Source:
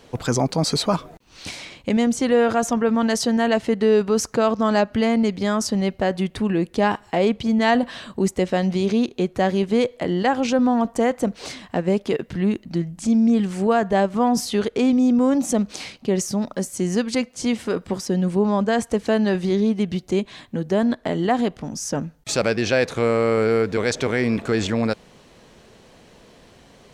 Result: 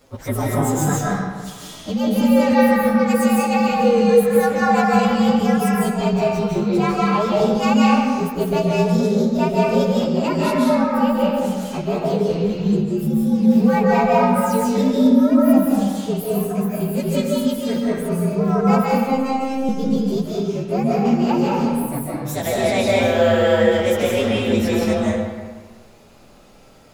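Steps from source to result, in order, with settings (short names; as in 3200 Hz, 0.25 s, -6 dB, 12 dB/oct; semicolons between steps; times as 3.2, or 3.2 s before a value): inharmonic rescaling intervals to 118%; 18.9–19.69 robotiser 265 Hz; digital reverb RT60 1.5 s, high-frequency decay 0.65×, pre-delay 0.115 s, DRR -5 dB; gain -1 dB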